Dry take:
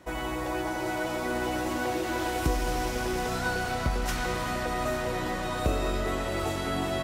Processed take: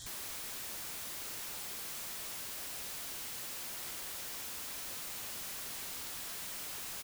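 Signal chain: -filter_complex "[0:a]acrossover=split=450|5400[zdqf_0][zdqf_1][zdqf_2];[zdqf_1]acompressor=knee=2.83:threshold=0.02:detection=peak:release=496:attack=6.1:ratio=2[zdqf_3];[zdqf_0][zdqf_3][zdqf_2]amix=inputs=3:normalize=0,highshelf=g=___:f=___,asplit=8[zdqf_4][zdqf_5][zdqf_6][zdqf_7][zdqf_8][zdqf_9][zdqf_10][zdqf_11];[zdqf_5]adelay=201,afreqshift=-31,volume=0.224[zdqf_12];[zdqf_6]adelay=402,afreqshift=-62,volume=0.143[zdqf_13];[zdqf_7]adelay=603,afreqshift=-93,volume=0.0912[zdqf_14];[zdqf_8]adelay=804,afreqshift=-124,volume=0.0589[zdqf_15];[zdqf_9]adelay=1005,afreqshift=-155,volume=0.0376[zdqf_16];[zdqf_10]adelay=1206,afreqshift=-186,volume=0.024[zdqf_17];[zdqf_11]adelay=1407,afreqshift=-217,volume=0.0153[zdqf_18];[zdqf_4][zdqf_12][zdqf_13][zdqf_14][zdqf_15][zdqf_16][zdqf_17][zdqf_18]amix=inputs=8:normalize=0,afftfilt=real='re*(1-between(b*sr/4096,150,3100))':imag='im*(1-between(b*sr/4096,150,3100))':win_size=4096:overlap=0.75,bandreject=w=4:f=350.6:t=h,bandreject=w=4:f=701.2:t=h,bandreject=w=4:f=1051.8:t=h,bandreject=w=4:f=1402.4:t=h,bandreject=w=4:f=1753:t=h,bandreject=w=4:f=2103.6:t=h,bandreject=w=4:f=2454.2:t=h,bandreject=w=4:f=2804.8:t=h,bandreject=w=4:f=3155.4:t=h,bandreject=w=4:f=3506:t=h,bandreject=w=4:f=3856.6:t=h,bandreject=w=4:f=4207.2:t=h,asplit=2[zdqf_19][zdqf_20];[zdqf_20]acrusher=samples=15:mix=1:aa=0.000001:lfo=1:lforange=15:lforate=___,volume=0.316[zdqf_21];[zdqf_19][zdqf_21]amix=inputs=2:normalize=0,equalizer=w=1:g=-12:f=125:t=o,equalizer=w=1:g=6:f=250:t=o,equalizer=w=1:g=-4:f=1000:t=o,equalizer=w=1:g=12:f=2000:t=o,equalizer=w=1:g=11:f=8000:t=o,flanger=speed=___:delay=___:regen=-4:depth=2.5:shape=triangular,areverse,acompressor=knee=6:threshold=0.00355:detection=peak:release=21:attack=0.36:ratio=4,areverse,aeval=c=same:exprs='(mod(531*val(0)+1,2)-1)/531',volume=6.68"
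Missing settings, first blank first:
-6.5, 11000, 0.46, 0.89, 7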